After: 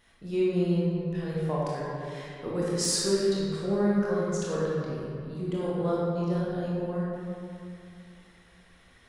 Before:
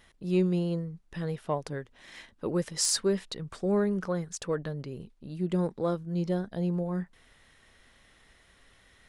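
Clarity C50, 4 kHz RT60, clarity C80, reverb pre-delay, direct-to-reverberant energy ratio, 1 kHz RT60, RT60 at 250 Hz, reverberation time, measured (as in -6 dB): -3.5 dB, 1.4 s, -1.0 dB, 19 ms, -7.0 dB, 2.5 s, 2.5 s, 2.5 s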